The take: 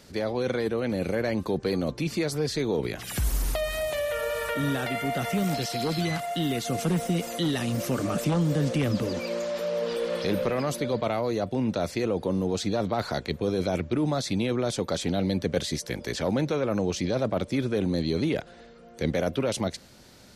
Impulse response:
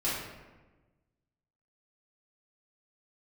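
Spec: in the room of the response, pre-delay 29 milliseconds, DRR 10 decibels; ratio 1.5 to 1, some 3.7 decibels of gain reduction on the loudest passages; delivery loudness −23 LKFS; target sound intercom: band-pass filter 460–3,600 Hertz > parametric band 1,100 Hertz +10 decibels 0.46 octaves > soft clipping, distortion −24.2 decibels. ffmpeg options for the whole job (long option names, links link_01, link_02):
-filter_complex "[0:a]acompressor=threshold=-32dB:ratio=1.5,asplit=2[link_01][link_02];[1:a]atrim=start_sample=2205,adelay=29[link_03];[link_02][link_03]afir=irnorm=-1:irlink=0,volume=-18dB[link_04];[link_01][link_04]amix=inputs=2:normalize=0,highpass=460,lowpass=3600,equalizer=frequency=1100:width_type=o:width=0.46:gain=10,asoftclip=threshold=-20.5dB,volume=11.5dB"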